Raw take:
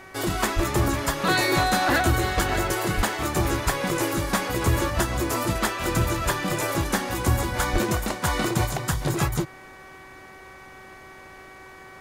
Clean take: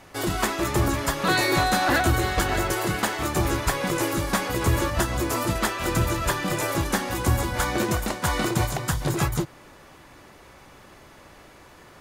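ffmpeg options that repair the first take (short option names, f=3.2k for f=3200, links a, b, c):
-filter_complex "[0:a]bandreject=f=378.8:t=h:w=4,bandreject=f=757.6:t=h:w=4,bandreject=f=1.1364k:t=h:w=4,bandreject=f=1.5152k:t=h:w=4,bandreject=f=1.894k:t=h:w=4,bandreject=f=2.2728k:t=h:w=4,asplit=3[a][b][c];[a]afade=t=out:st=0.55:d=0.02[d];[b]highpass=f=140:w=0.5412,highpass=f=140:w=1.3066,afade=t=in:st=0.55:d=0.02,afade=t=out:st=0.67:d=0.02[e];[c]afade=t=in:st=0.67:d=0.02[f];[d][e][f]amix=inputs=3:normalize=0,asplit=3[g][h][i];[g]afade=t=out:st=2.96:d=0.02[j];[h]highpass=f=140:w=0.5412,highpass=f=140:w=1.3066,afade=t=in:st=2.96:d=0.02,afade=t=out:st=3.08:d=0.02[k];[i]afade=t=in:st=3.08:d=0.02[l];[j][k][l]amix=inputs=3:normalize=0,asplit=3[m][n][o];[m]afade=t=out:st=7.72:d=0.02[p];[n]highpass=f=140:w=0.5412,highpass=f=140:w=1.3066,afade=t=in:st=7.72:d=0.02,afade=t=out:st=7.84:d=0.02[q];[o]afade=t=in:st=7.84:d=0.02[r];[p][q][r]amix=inputs=3:normalize=0"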